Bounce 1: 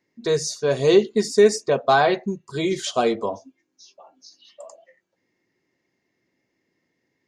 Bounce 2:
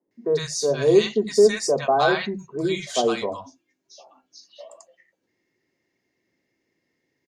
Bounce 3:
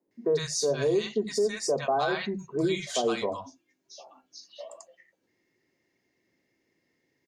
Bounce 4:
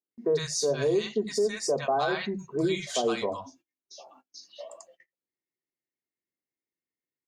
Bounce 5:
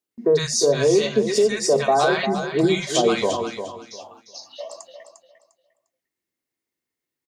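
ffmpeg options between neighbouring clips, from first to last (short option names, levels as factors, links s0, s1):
-filter_complex "[0:a]acrossover=split=180|990[s0][s1][s2];[s0]adelay=70[s3];[s2]adelay=110[s4];[s3][s1][s4]amix=inputs=3:normalize=0"
-af "alimiter=limit=0.133:level=0:latency=1:release=455"
-af "agate=range=0.0562:threshold=0.00141:ratio=16:detection=peak"
-af "aecho=1:1:351|702|1053:0.355|0.0816|0.0188,volume=2.51"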